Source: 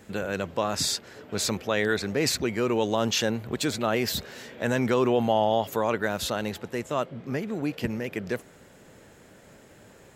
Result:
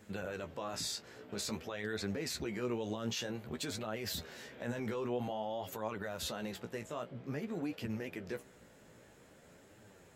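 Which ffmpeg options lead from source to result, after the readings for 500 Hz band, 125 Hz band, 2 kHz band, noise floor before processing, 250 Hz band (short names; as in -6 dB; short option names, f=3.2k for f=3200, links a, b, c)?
-13.5 dB, -11.0 dB, -13.0 dB, -53 dBFS, -11.5 dB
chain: -af "alimiter=limit=-21.5dB:level=0:latency=1:release=40,flanger=delay=9:depth=9.9:regen=27:speed=0.51:shape=triangular,volume=-4dB"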